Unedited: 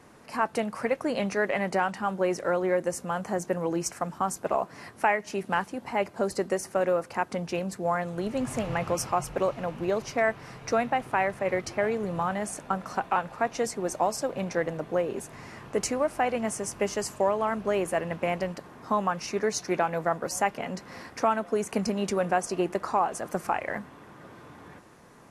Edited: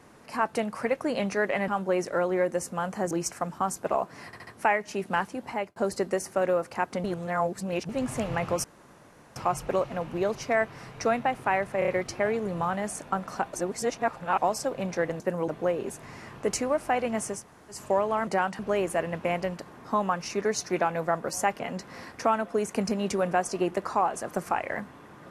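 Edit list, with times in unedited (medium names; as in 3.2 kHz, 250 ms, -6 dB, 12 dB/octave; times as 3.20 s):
1.68–2.00 s: move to 17.57 s
3.43–3.71 s: move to 14.78 s
4.86 s: stutter 0.07 s, 4 plays
5.89–6.15 s: fade out
7.43–8.28 s: reverse
9.03 s: insert room tone 0.72 s
11.46 s: stutter 0.03 s, 4 plays
13.11–13.96 s: reverse
16.69–17.06 s: room tone, crossfade 0.16 s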